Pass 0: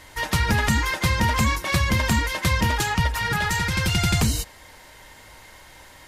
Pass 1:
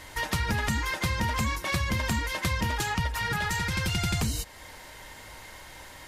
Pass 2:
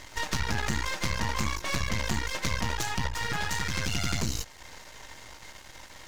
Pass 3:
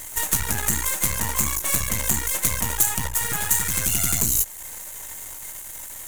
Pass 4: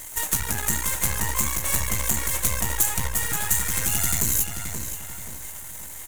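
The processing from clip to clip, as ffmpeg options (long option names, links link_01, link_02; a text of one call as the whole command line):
ffmpeg -i in.wav -af "acompressor=threshold=-32dB:ratio=2,volume=1dB" out.wav
ffmpeg -i in.wav -af "highshelf=frequency=7800:width_type=q:width=3:gain=-6.5,aeval=exprs='max(val(0),0)':channel_layout=same,volume=2dB" out.wav
ffmpeg -i in.wav -af "aexciter=amount=8.7:drive=8.8:freq=7400,volume=1.5dB" out.wav
ffmpeg -i in.wav -filter_complex "[0:a]asplit=2[link_01][link_02];[link_02]adelay=528,lowpass=frequency=4700:poles=1,volume=-5.5dB,asplit=2[link_03][link_04];[link_04]adelay=528,lowpass=frequency=4700:poles=1,volume=0.41,asplit=2[link_05][link_06];[link_06]adelay=528,lowpass=frequency=4700:poles=1,volume=0.41,asplit=2[link_07][link_08];[link_08]adelay=528,lowpass=frequency=4700:poles=1,volume=0.41,asplit=2[link_09][link_10];[link_10]adelay=528,lowpass=frequency=4700:poles=1,volume=0.41[link_11];[link_01][link_03][link_05][link_07][link_09][link_11]amix=inputs=6:normalize=0,volume=-2dB" out.wav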